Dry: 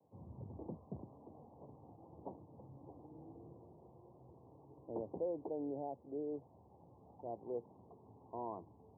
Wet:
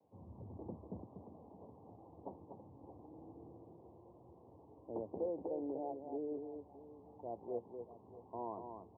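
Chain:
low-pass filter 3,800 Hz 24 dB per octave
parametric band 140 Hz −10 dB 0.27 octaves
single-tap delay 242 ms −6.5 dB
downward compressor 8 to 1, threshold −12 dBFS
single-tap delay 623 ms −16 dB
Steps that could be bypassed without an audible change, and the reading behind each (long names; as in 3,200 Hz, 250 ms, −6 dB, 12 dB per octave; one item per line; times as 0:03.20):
low-pass filter 3,800 Hz: nothing at its input above 1,000 Hz
downward compressor, threshold −12 dBFS: peak of its input −28.0 dBFS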